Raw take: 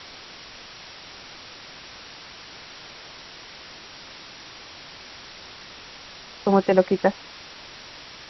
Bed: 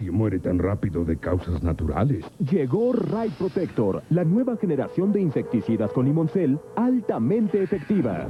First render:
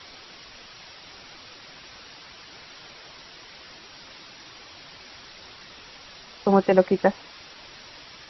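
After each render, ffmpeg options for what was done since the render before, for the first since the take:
-af "afftdn=nr=6:nf=-43"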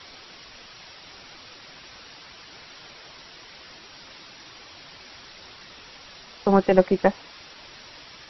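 -af "aeval=exprs='0.631*(cos(1*acos(clip(val(0)/0.631,-1,1)))-cos(1*PI/2))+0.112*(cos(2*acos(clip(val(0)/0.631,-1,1)))-cos(2*PI/2))':c=same"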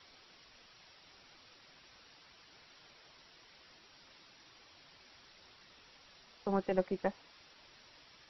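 -af "volume=0.178"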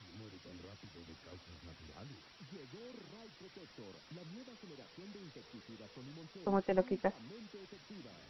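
-filter_complex "[1:a]volume=0.0266[s0];[0:a][s0]amix=inputs=2:normalize=0"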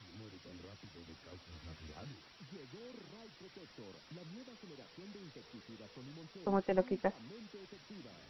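-filter_complex "[0:a]asettb=1/sr,asplit=3[s0][s1][s2];[s0]atrim=end=1.514[s3];[s1]atrim=start=1.51:end=2.12,asetpts=PTS-STARTPTS,afade=t=in:d=0.004:c=qsin,afade=t=out:st=0.606:d=0.004:c=qsin,asplit=2[s4][s5];[s5]adelay=13,volume=0.75[s6];[s4][s6]amix=inputs=2:normalize=0,atrim=end_sample=26901[s7];[s2]atrim=start=2.116[s8];[s3][s7]acrossfade=d=0.004:c1=hsin:c2=qsin[s9];[s9][s8]acrossfade=d=0.004:c1=qsin:c2=hsin"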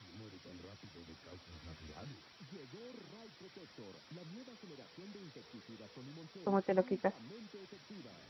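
-af "highpass=69,bandreject=f=2800:w=18"

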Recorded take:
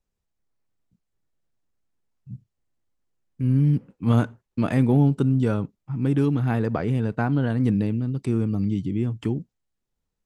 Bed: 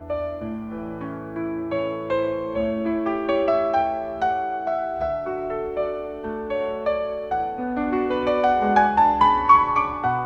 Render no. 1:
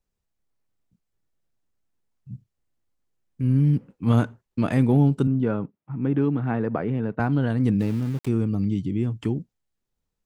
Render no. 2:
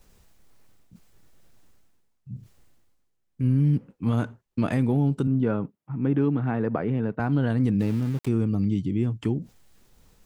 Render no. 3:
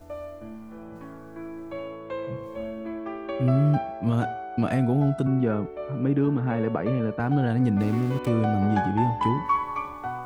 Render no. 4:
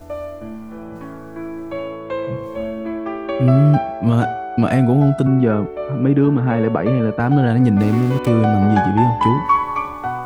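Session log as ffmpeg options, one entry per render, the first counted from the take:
-filter_complex "[0:a]asettb=1/sr,asplit=3[s0][s1][s2];[s0]atrim=end=5.274[s3];[s1]atrim=start=5.27:end=7.2,asetpts=PTS-STARTPTS,afade=t=in:d=0.004:c=qsin,afade=t=out:st=1.926:d=0.004:c=qsin,highpass=140,lowpass=2100[s4];[s2]atrim=start=7.196[s5];[s3][s4]acrossfade=d=0.004:c1=hsin:c2=qsin[s6];[s6][s5]acrossfade=d=0.004:c1=qsin:c2=hsin,asplit=3[s7][s8][s9];[s7]afade=t=out:st=7.79:d=0.02[s10];[s8]aeval=exprs='val(0)*gte(abs(val(0)),0.015)':c=same,afade=t=in:st=7.79:d=0.02,afade=t=out:st=8.27:d=0.02[s11];[s9]afade=t=in:st=8.27:d=0.02[s12];[s10][s11][s12]amix=inputs=3:normalize=0"
-af "alimiter=limit=0.2:level=0:latency=1:release=126,areverse,acompressor=mode=upward:threshold=0.0158:ratio=2.5,areverse"
-filter_complex "[1:a]volume=0.316[s0];[0:a][s0]amix=inputs=2:normalize=0"
-af "volume=2.66"

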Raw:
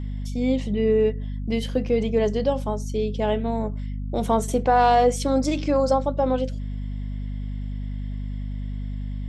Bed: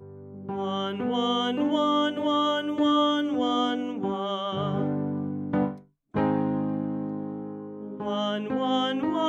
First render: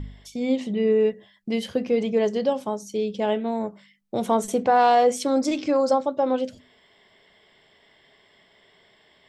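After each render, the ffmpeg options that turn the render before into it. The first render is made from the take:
-af "bandreject=f=50:t=h:w=4,bandreject=f=100:t=h:w=4,bandreject=f=150:t=h:w=4,bandreject=f=200:t=h:w=4,bandreject=f=250:t=h:w=4"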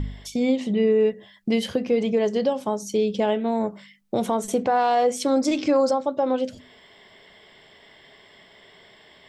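-filter_complex "[0:a]asplit=2[s0][s1];[s1]acompressor=threshold=0.0355:ratio=6,volume=1.19[s2];[s0][s2]amix=inputs=2:normalize=0,alimiter=limit=0.251:level=0:latency=1:release=389"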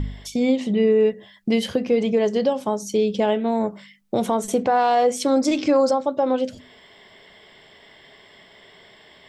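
-af "volume=1.26"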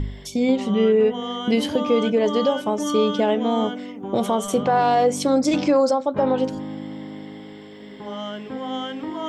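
-filter_complex "[1:a]volume=0.668[s0];[0:a][s0]amix=inputs=2:normalize=0"

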